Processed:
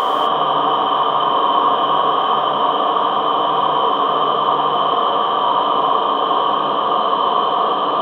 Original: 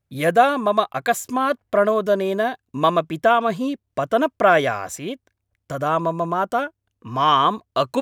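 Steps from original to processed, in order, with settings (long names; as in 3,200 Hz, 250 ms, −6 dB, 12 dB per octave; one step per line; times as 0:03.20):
loudspeaker in its box 310–3,600 Hz, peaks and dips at 500 Hz +9 dB, 1,400 Hz −4 dB, 2,200 Hz −7 dB
extreme stretch with random phases 49×, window 1.00 s, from 0:07.33
reverb whose tail is shaped and stops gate 280 ms flat, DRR −0.5 dB
level −1 dB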